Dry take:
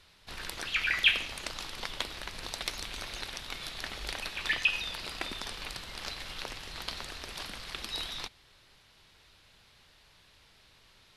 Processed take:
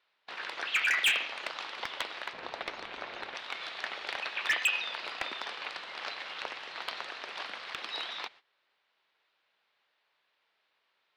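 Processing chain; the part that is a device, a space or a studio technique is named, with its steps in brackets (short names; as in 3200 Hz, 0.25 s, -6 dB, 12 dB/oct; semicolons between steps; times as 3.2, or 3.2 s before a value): walkie-talkie (BPF 540–2800 Hz; hard clip -26.5 dBFS, distortion -9 dB; gate -57 dBFS, range -16 dB); 2.33–3.35 tilt -3 dB/oct; gain +5 dB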